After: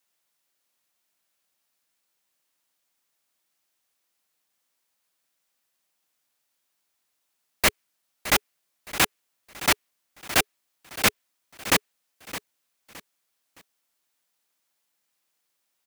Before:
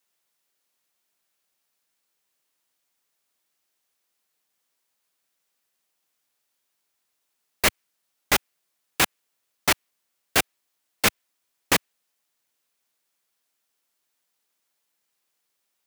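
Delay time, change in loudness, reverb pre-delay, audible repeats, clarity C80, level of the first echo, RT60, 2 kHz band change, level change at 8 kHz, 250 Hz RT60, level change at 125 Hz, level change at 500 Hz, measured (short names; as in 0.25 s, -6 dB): 0.616 s, 0.0 dB, none, 3, none, -14.5 dB, none, 0.0 dB, 0.0 dB, none, 0.0 dB, -1.0 dB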